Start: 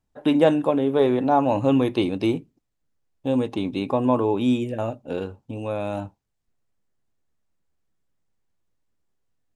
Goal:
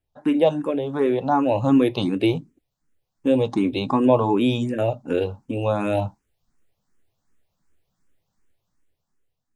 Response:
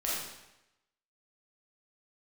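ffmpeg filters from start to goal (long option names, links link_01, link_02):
-filter_complex "[0:a]dynaudnorm=framelen=350:gausssize=7:maxgain=10.5dB,asplit=2[link_01][link_02];[link_02]afreqshift=2.7[link_03];[link_01][link_03]amix=inputs=2:normalize=1"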